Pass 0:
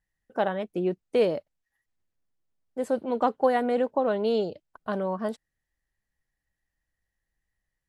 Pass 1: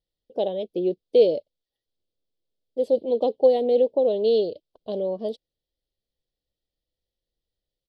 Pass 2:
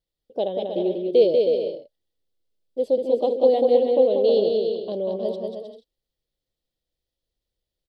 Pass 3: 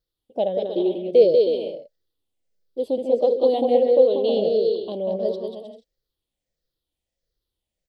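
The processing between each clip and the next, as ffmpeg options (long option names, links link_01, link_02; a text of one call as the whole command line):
ffmpeg -i in.wav -af "firequalizer=gain_entry='entry(190,0);entry(340,7);entry(500,12);entry(860,-6);entry(1400,-27);entry(2100,-10);entry(3300,11);entry(4700,9);entry(6800,-9);entry(11000,-5)':delay=0.05:min_phase=1,volume=-4.5dB" out.wav
ffmpeg -i in.wav -af "aecho=1:1:190|313.5|393.8|446|479.9:0.631|0.398|0.251|0.158|0.1" out.wav
ffmpeg -i in.wav -af "afftfilt=real='re*pow(10,8/40*sin(2*PI*(0.58*log(max(b,1)*sr/1024/100)/log(2)-(-1.5)*(pts-256)/sr)))':imag='im*pow(10,8/40*sin(2*PI*(0.58*log(max(b,1)*sr/1024/100)/log(2)-(-1.5)*(pts-256)/sr)))':win_size=1024:overlap=0.75" out.wav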